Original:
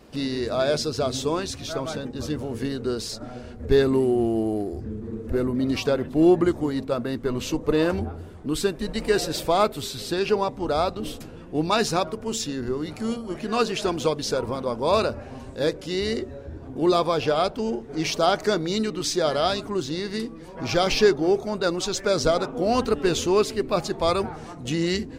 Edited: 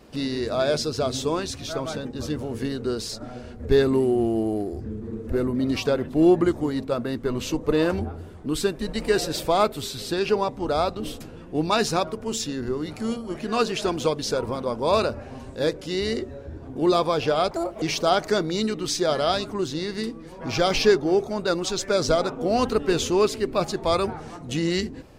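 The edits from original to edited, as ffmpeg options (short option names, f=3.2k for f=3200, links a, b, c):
-filter_complex "[0:a]asplit=3[a][b][c];[a]atrim=end=17.514[d];[b]atrim=start=17.51:end=17.98,asetpts=PTS-STARTPTS,asetrate=67032,aresample=44100,atrim=end_sample=13636,asetpts=PTS-STARTPTS[e];[c]atrim=start=17.976[f];[d][e]acrossfade=d=0.004:c1=hsin:c2=hsin[g];[g][f]acrossfade=d=0.004:c1=hsin:c2=hsin"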